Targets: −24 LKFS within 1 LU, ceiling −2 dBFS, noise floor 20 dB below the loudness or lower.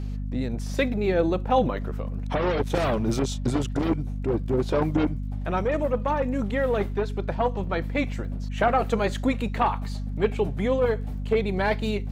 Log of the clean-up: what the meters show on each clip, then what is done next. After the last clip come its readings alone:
crackle rate 22 per second; mains hum 50 Hz; hum harmonics up to 250 Hz; level of the hum −28 dBFS; integrated loudness −26.0 LKFS; sample peak −9.0 dBFS; target loudness −24.0 LKFS
→ click removal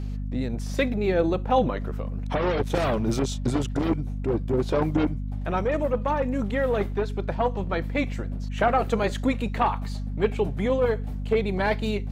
crackle rate 0.083 per second; mains hum 50 Hz; hum harmonics up to 250 Hz; level of the hum −28 dBFS
→ hum removal 50 Hz, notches 5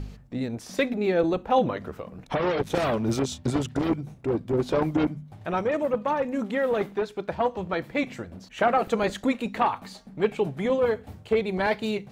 mains hum none found; integrated loudness −26.5 LKFS; sample peak −9.5 dBFS; target loudness −24.0 LKFS
→ level +2.5 dB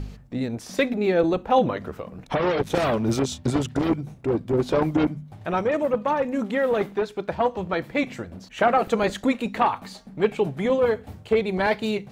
integrated loudness −24.0 LKFS; sample peak −7.0 dBFS; background noise floor −47 dBFS

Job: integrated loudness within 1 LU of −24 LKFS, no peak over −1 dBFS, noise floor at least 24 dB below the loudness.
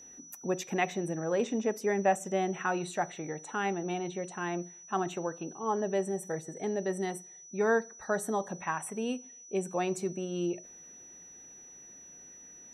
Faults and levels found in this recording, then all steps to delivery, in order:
interfering tone 5,900 Hz; level of the tone −49 dBFS; integrated loudness −33.0 LKFS; sample peak −15.5 dBFS; target loudness −24.0 LKFS
→ notch filter 5,900 Hz, Q 30
level +9 dB

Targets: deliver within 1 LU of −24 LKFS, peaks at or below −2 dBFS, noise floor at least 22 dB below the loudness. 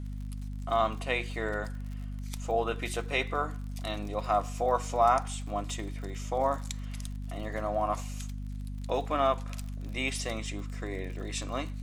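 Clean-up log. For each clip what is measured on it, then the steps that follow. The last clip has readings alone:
crackle rate 43 per second; mains hum 50 Hz; hum harmonics up to 250 Hz; level of the hum −35 dBFS; integrated loudness −32.5 LKFS; sample peak −11.0 dBFS; target loudness −24.0 LKFS
→ click removal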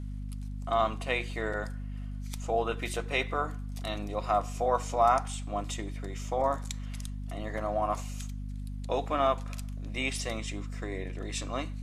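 crackle rate 0.085 per second; mains hum 50 Hz; hum harmonics up to 250 Hz; level of the hum −35 dBFS
→ hum removal 50 Hz, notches 5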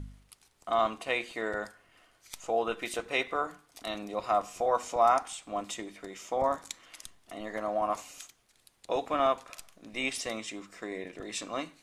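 mains hum none found; integrated loudness −32.0 LKFS; sample peak −12.0 dBFS; target loudness −24.0 LKFS
→ level +8 dB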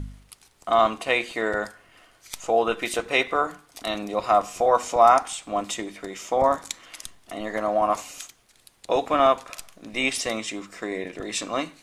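integrated loudness −24.0 LKFS; sample peak −4.0 dBFS; background noise floor −60 dBFS

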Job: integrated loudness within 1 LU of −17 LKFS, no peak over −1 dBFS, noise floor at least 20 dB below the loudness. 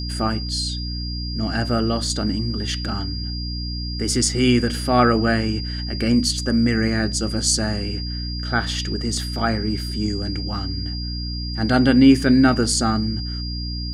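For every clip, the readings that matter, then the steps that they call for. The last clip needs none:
mains hum 60 Hz; hum harmonics up to 300 Hz; level of the hum −26 dBFS; interfering tone 4,800 Hz; level of the tone −31 dBFS; integrated loudness −21.0 LKFS; sample peak −3.0 dBFS; target loudness −17.0 LKFS
→ hum removal 60 Hz, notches 5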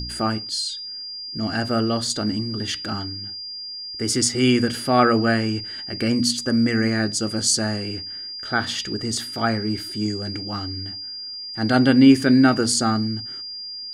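mains hum none found; interfering tone 4,800 Hz; level of the tone −31 dBFS
→ notch filter 4,800 Hz, Q 30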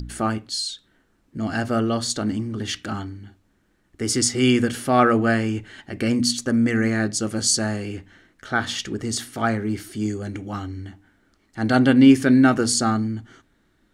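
interfering tone none found; integrated loudness −21.5 LKFS; sample peak −3.0 dBFS; target loudness −17.0 LKFS
→ level +4.5 dB
brickwall limiter −1 dBFS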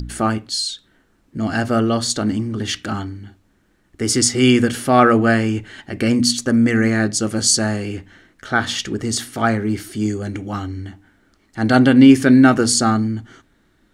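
integrated loudness −17.0 LKFS; sample peak −1.0 dBFS; background noise floor −60 dBFS

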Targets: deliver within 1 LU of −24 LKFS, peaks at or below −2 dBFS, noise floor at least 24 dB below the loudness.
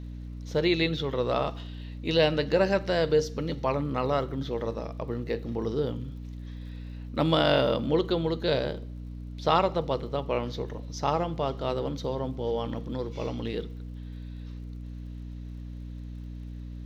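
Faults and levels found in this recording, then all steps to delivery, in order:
crackle rate 54 per second; mains hum 60 Hz; hum harmonics up to 300 Hz; level of the hum −36 dBFS; integrated loudness −28.5 LKFS; sample peak −8.5 dBFS; target loudness −24.0 LKFS
→ click removal
mains-hum notches 60/120/180/240/300 Hz
level +4.5 dB

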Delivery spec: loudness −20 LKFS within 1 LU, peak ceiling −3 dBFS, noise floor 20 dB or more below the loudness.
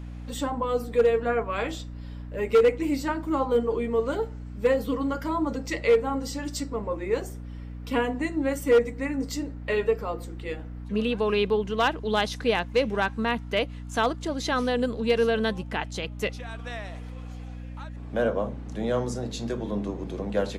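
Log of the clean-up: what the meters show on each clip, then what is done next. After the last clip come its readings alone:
share of clipped samples 0.3%; peaks flattened at −13.5 dBFS; mains hum 60 Hz; hum harmonics up to 300 Hz; level of the hum −35 dBFS; integrated loudness −27.0 LKFS; sample peak −13.5 dBFS; target loudness −20.0 LKFS
→ clipped peaks rebuilt −13.5 dBFS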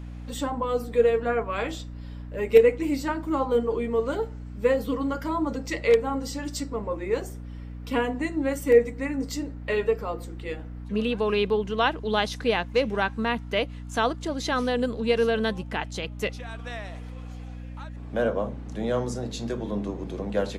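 share of clipped samples 0.0%; mains hum 60 Hz; hum harmonics up to 300 Hz; level of the hum −35 dBFS
→ hum removal 60 Hz, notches 5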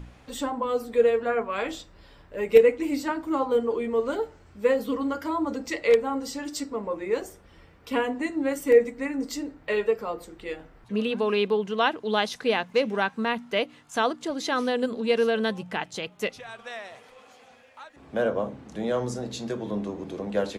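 mains hum none found; integrated loudness −26.5 LKFS; sample peak −4.5 dBFS; target loudness −20.0 LKFS
→ level +6.5 dB
brickwall limiter −3 dBFS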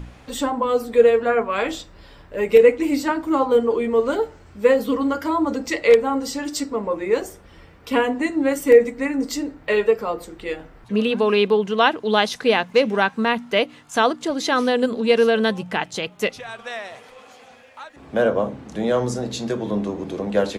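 integrated loudness −20.5 LKFS; sample peak −3.0 dBFS; background noise floor −47 dBFS

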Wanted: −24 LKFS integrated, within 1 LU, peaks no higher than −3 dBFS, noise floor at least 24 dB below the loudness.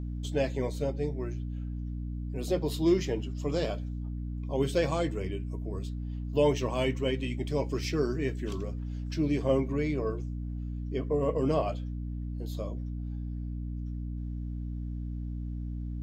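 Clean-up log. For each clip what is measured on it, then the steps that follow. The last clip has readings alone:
mains hum 60 Hz; hum harmonics up to 300 Hz; level of the hum −33 dBFS; integrated loudness −32.0 LKFS; sample peak −13.5 dBFS; target loudness −24.0 LKFS
→ hum removal 60 Hz, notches 5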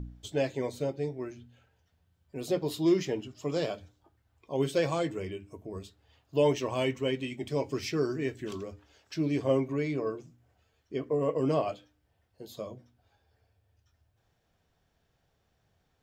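mains hum none found; integrated loudness −31.5 LKFS; sample peak −13.5 dBFS; target loudness −24.0 LKFS
→ level +7.5 dB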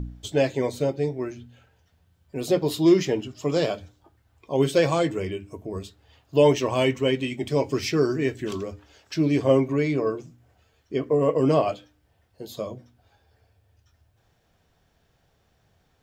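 integrated loudness −24.5 LKFS; sample peak −6.0 dBFS; background noise floor −67 dBFS

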